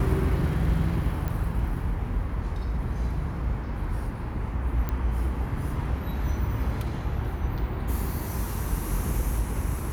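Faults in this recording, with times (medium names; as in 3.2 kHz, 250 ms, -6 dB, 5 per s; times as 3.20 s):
1.28 s: pop -18 dBFS
4.89 s: pop -16 dBFS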